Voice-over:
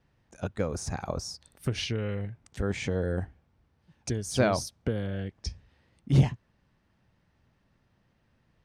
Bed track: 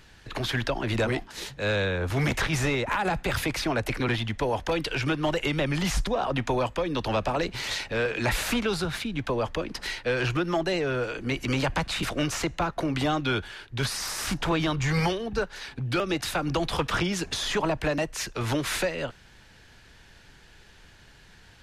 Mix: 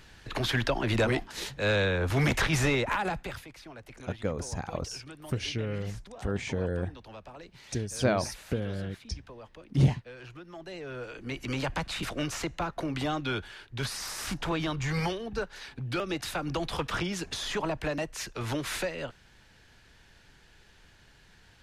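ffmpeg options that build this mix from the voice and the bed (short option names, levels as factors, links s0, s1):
-filter_complex "[0:a]adelay=3650,volume=0.841[s0];[1:a]volume=5.62,afade=t=out:st=2.78:d=0.66:silence=0.1,afade=t=in:st=10.52:d=1.17:silence=0.177828[s1];[s0][s1]amix=inputs=2:normalize=0"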